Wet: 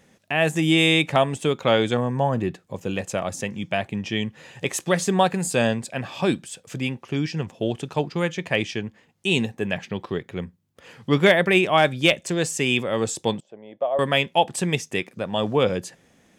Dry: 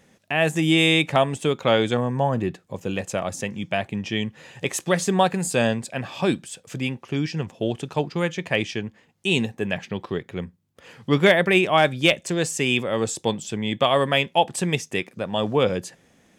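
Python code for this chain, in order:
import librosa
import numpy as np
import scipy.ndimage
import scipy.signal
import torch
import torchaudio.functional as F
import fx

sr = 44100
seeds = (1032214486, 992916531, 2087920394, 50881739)

y = fx.bandpass_q(x, sr, hz=610.0, q=4.2, at=(13.4, 13.99))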